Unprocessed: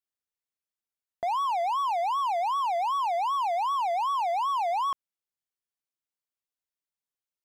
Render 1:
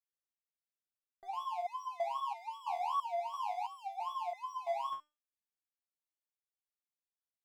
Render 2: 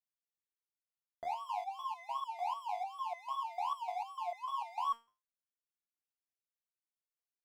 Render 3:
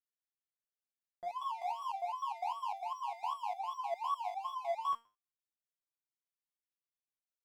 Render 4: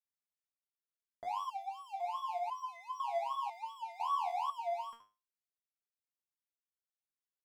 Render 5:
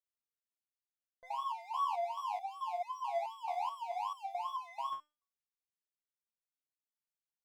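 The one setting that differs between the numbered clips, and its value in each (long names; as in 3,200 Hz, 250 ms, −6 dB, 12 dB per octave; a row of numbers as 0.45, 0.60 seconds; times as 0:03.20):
step-sequenced resonator, speed: 3, 6.7, 9.9, 2, 4.6 Hertz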